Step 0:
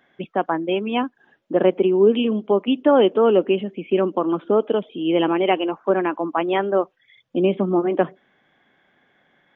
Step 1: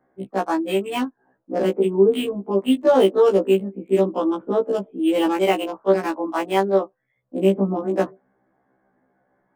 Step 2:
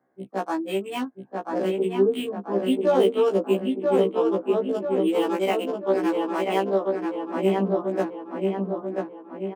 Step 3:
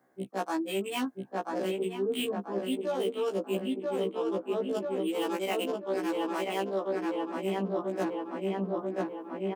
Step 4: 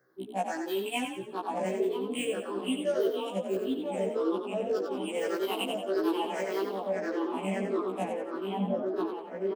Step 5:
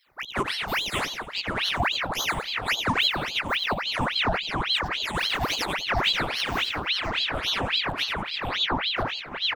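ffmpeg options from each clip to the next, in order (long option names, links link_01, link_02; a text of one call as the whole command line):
ffmpeg -i in.wav -filter_complex "[0:a]acrossover=split=240|440|1300[link_01][link_02][link_03][link_04];[link_04]acrusher=bits=4:mix=0:aa=0.5[link_05];[link_01][link_02][link_03][link_05]amix=inputs=4:normalize=0,afftfilt=real='re*1.73*eq(mod(b,3),0)':imag='im*1.73*eq(mod(b,3),0)':win_size=2048:overlap=0.75,volume=1.5dB" out.wav
ffmpeg -i in.wav -filter_complex "[0:a]highpass=100,asplit=2[link_01][link_02];[link_02]adelay=987,lowpass=frequency=2800:poles=1,volume=-3dB,asplit=2[link_03][link_04];[link_04]adelay=987,lowpass=frequency=2800:poles=1,volume=0.52,asplit=2[link_05][link_06];[link_06]adelay=987,lowpass=frequency=2800:poles=1,volume=0.52,asplit=2[link_07][link_08];[link_08]adelay=987,lowpass=frequency=2800:poles=1,volume=0.52,asplit=2[link_09][link_10];[link_10]adelay=987,lowpass=frequency=2800:poles=1,volume=0.52,asplit=2[link_11][link_12];[link_12]adelay=987,lowpass=frequency=2800:poles=1,volume=0.52,asplit=2[link_13][link_14];[link_14]adelay=987,lowpass=frequency=2800:poles=1,volume=0.52[link_15];[link_03][link_05][link_07][link_09][link_11][link_13][link_15]amix=inputs=7:normalize=0[link_16];[link_01][link_16]amix=inputs=2:normalize=0,volume=-5dB" out.wav
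ffmpeg -i in.wav -af "highshelf=frequency=2400:gain=9,areverse,acompressor=threshold=-30dB:ratio=6,areverse,volume=1.5dB" out.wav
ffmpeg -i in.wav -filter_complex "[0:a]afftfilt=real='re*pow(10,17/40*sin(2*PI*(0.56*log(max(b,1)*sr/1024/100)/log(2)-(-1.7)*(pts-256)/sr)))':imag='im*pow(10,17/40*sin(2*PI*(0.56*log(max(b,1)*sr/1024/100)/log(2)-(-1.7)*(pts-256)/sr)))':win_size=1024:overlap=0.75,asplit=2[link_01][link_02];[link_02]asplit=5[link_03][link_04][link_05][link_06][link_07];[link_03]adelay=90,afreqshift=38,volume=-6.5dB[link_08];[link_04]adelay=180,afreqshift=76,volume=-14dB[link_09];[link_05]adelay=270,afreqshift=114,volume=-21.6dB[link_10];[link_06]adelay=360,afreqshift=152,volume=-29.1dB[link_11];[link_07]adelay=450,afreqshift=190,volume=-36.6dB[link_12];[link_08][link_09][link_10][link_11][link_12]amix=inputs=5:normalize=0[link_13];[link_01][link_13]amix=inputs=2:normalize=0,volume=-4dB" out.wav
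ffmpeg -i in.wav -af "aeval=exprs='val(0)*sin(2*PI*2000*n/s+2000*0.85/3.6*sin(2*PI*3.6*n/s))':channel_layout=same,volume=7dB" out.wav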